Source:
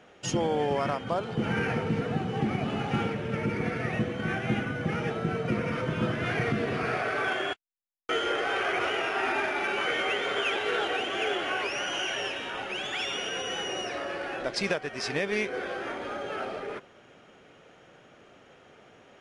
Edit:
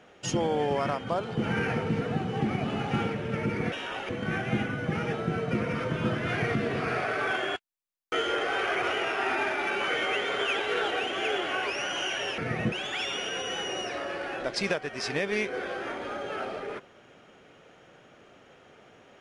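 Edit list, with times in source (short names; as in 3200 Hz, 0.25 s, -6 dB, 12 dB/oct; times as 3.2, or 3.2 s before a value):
3.72–4.06 swap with 12.35–12.72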